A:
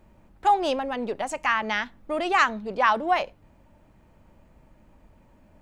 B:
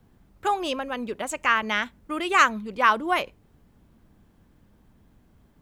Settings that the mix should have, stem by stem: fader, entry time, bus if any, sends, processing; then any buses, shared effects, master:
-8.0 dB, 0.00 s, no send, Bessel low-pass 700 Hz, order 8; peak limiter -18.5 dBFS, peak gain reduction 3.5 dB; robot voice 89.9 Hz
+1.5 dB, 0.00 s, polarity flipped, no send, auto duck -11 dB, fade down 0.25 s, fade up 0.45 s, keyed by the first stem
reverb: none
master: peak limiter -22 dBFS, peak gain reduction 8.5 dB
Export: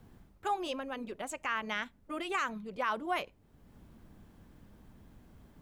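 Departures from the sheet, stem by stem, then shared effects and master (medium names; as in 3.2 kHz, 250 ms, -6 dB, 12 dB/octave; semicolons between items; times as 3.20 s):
stem A -8.0 dB -> -16.0 dB; stem B: polarity flipped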